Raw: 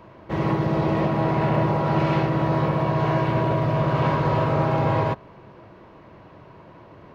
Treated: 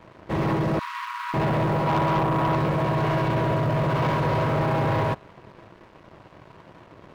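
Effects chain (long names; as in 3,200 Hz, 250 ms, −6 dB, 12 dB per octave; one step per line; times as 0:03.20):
0:01.87–0:02.56: high shelf with overshoot 1,600 Hz −12 dB, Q 3
leveller curve on the samples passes 3
0:00.79–0:01.34: linear-phase brick-wall high-pass 920 Hz
level −9 dB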